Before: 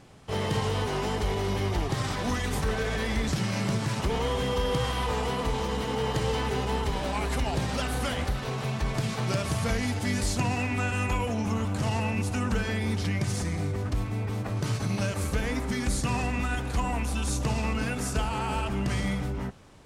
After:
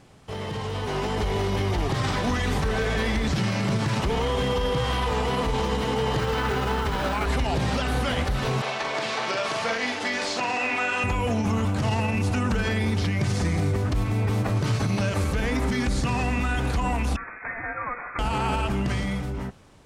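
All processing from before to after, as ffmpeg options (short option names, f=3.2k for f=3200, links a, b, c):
-filter_complex "[0:a]asettb=1/sr,asplit=3[a][b][c];[a]atrim=end=6.194[d];[b]atrim=start=6.19:end=7.26,asetpts=PTS-STARTPTS,afade=t=in:d=0.004:c=qsin,afade=t=out:st=1.066:d=0.004:c=qsin,highpass=41,equalizer=f=1.4k:w=3.1:g=9.5,acrusher=bits=4:mode=log:mix=0:aa=0.000001[e];[c]atrim=start=7.256[f];[d][e]acrossfade=d=0.004:c1=hsin:c2=qsin[g];[g][f]acrossfade=d=0.004:c1=qsin:c2=hsin,asettb=1/sr,asplit=3[h][i][j];[h]atrim=end=8.624[k];[i]atrim=start=8.62:end=11.04,asetpts=PTS-STARTPTS,afade=t=in:d=0.004:c=qsin,afade=t=out:st=2.416:d=0.004:c=qsin,highpass=500,lowpass=5.6k,asplit=2[l][m];[m]adelay=44,volume=-5.5dB[n];[l][n]amix=inputs=2:normalize=0,atrim=end_sample=106722[o];[j]atrim=start=11.036[p];[k][o]acrossfade=d=0.004:c1=hsin:c2=qsin[q];[q][p]acrossfade=d=0.004:c1=qsin:c2=hsin,asettb=1/sr,asplit=3[r][s][t];[r]atrim=end=17.164[u];[s]atrim=start=17.16:end=18.19,asetpts=PTS-STARTPTS,afade=t=in:d=0.004:c=qsin,afade=t=out:st=1.026:d=0.004:c=qsin,highpass=1.1k,lowpass=f=2.3k:t=q:w=0.5098,lowpass=f=2.3k:t=q:w=0.6013,lowpass=f=2.3k:t=q:w=0.9,lowpass=f=2.3k:t=q:w=2.563,afreqshift=-2700[v];[t]atrim=start=18.186[w];[u][v]acrossfade=d=0.004:c1=hsin:c2=qsin[x];[x][w]acrossfade=d=0.004:c1=qsin:c2=hsin,acrossover=split=5400[y][z];[z]acompressor=threshold=-50dB:ratio=4:attack=1:release=60[aa];[y][aa]amix=inputs=2:normalize=0,alimiter=level_in=0.5dB:limit=-24dB:level=0:latency=1:release=59,volume=-0.5dB,dynaudnorm=f=110:g=17:m=8dB"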